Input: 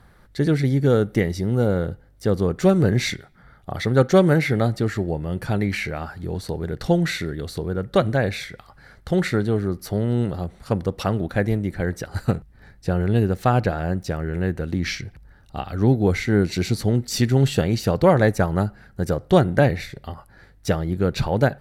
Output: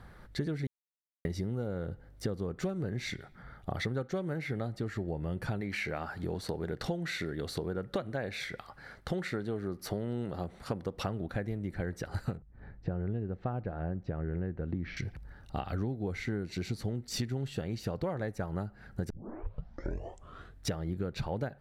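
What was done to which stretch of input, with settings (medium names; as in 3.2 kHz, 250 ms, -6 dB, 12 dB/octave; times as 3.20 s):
0.67–1.25 s: mute
5.61–10.94 s: bass shelf 130 Hz -10 dB
12.37–14.97 s: tape spacing loss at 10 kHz 40 dB
19.10 s: tape start 1.59 s
whole clip: treble shelf 5.3 kHz -6.5 dB; compression 10:1, threshold -31 dBFS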